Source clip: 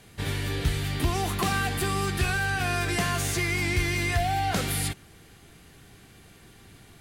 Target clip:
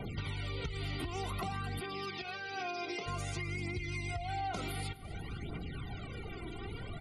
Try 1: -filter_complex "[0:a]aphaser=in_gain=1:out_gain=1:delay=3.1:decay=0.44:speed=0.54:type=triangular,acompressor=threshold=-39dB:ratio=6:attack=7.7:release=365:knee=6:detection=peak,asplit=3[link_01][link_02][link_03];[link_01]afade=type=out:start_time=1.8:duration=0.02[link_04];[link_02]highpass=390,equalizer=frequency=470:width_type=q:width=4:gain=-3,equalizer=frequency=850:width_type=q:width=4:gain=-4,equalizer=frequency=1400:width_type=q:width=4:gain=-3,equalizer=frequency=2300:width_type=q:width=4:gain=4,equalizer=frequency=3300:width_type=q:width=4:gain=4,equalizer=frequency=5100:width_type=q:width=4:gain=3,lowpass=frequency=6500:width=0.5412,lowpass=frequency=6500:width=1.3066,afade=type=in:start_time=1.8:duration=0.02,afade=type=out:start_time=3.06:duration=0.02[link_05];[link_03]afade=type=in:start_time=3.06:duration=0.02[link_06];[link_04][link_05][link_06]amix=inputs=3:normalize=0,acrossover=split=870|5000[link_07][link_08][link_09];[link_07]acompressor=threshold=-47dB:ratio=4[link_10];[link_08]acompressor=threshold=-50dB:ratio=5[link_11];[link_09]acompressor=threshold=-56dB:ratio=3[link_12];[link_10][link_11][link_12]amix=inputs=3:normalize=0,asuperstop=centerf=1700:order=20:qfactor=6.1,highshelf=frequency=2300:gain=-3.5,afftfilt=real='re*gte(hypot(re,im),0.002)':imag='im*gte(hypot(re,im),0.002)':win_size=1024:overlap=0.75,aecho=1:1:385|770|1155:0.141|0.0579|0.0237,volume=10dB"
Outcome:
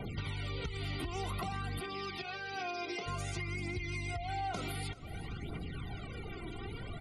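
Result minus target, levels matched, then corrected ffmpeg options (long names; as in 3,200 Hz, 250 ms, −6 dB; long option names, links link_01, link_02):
echo 132 ms late
-filter_complex "[0:a]aphaser=in_gain=1:out_gain=1:delay=3.1:decay=0.44:speed=0.54:type=triangular,acompressor=threshold=-39dB:ratio=6:attack=7.7:release=365:knee=6:detection=peak,asplit=3[link_01][link_02][link_03];[link_01]afade=type=out:start_time=1.8:duration=0.02[link_04];[link_02]highpass=390,equalizer=frequency=470:width_type=q:width=4:gain=-3,equalizer=frequency=850:width_type=q:width=4:gain=-4,equalizer=frequency=1400:width_type=q:width=4:gain=-3,equalizer=frequency=2300:width_type=q:width=4:gain=4,equalizer=frequency=3300:width_type=q:width=4:gain=4,equalizer=frequency=5100:width_type=q:width=4:gain=3,lowpass=frequency=6500:width=0.5412,lowpass=frequency=6500:width=1.3066,afade=type=in:start_time=1.8:duration=0.02,afade=type=out:start_time=3.06:duration=0.02[link_05];[link_03]afade=type=in:start_time=3.06:duration=0.02[link_06];[link_04][link_05][link_06]amix=inputs=3:normalize=0,acrossover=split=870|5000[link_07][link_08][link_09];[link_07]acompressor=threshold=-47dB:ratio=4[link_10];[link_08]acompressor=threshold=-50dB:ratio=5[link_11];[link_09]acompressor=threshold=-56dB:ratio=3[link_12];[link_10][link_11][link_12]amix=inputs=3:normalize=0,asuperstop=centerf=1700:order=20:qfactor=6.1,highshelf=frequency=2300:gain=-3.5,afftfilt=real='re*gte(hypot(re,im),0.002)':imag='im*gte(hypot(re,im),0.002)':win_size=1024:overlap=0.75,aecho=1:1:253|506|759:0.141|0.0579|0.0237,volume=10dB"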